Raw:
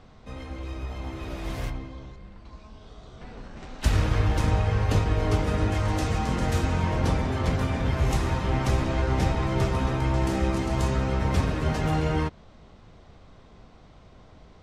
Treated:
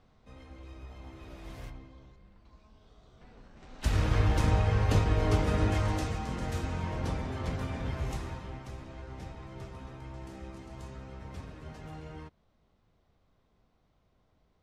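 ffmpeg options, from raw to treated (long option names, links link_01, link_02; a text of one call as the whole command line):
ffmpeg -i in.wav -af "volume=-2.5dB,afade=type=in:start_time=3.59:duration=0.57:silence=0.316228,afade=type=out:start_time=5.76:duration=0.42:silence=0.473151,afade=type=out:start_time=7.89:duration=0.75:silence=0.298538" out.wav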